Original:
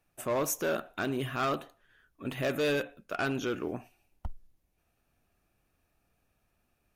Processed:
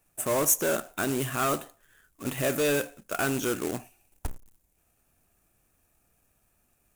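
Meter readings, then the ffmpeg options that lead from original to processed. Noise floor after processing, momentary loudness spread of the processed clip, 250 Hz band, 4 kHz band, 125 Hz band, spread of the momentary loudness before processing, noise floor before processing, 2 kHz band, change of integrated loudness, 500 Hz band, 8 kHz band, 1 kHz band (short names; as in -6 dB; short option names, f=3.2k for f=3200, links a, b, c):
-71 dBFS, 17 LU, +3.5 dB, +3.0 dB, +3.5 dB, 15 LU, -76 dBFS, +3.0 dB, +5.0 dB, +3.0 dB, +11.5 dB, +3.0 dB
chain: -af "acrusher=bits=2:mode=log:mix=0:aa=0.000001,highshelf=f=6k:t=q:w=1.5:g=7,volume=3dB"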